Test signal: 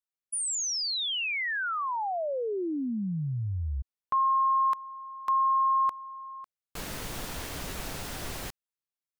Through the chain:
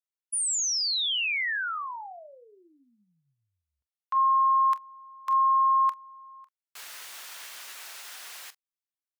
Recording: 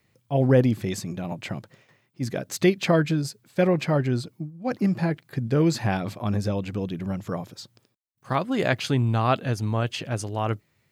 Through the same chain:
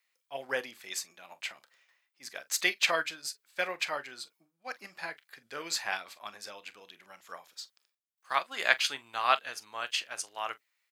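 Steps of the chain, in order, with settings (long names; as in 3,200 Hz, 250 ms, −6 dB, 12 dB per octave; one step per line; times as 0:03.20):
high-pass filter 1,300 Hz 12 dB per octave
on a send: ambience of single reflections 29 ms −15.5 dB, 43 ms −14 dB
on the sum: expander for the loud parts 1.5 to 1, over −48 dBFS
level +5 dB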